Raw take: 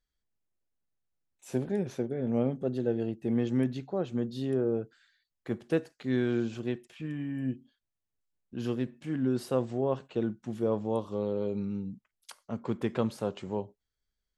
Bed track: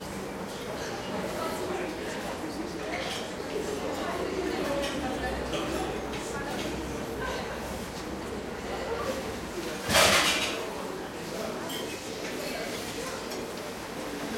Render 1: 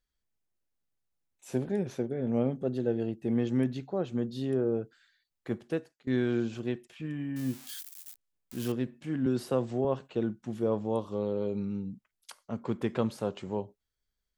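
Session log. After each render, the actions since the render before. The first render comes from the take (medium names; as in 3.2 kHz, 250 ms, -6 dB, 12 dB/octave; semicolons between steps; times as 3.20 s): 5.53–6.07 s: fade out, to -22 dB; 7.36–8.72 s: zero-crossing glitches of -31.5 dBFS; 9.26–9.85 s: three bands compressed up and down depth 40%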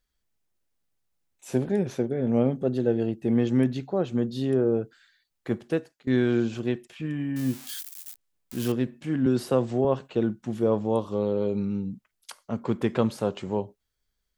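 trim +5.5 dB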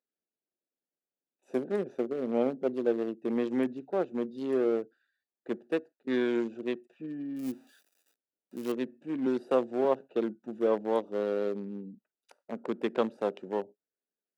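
local Wiener filter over 41 samples; Bessel high-pass 360 Hz, order 4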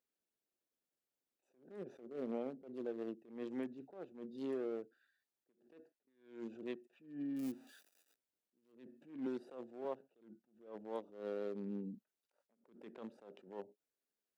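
compression 6:1, threshold -38 dBFS, peak gain reduction 17 dB; attacks held to a fixed rise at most 120 dB/s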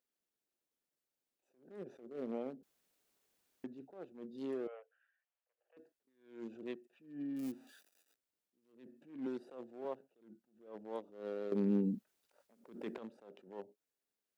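2.63–3.64 s: room tone; 4.67–5.77 s: Chebyshev band-pass 500–3100 Hz, order 5; 11.52–12.98 s: gain +11 dB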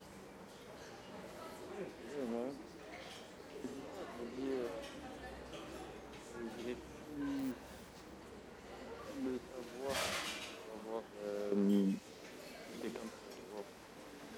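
add bed track -18 dB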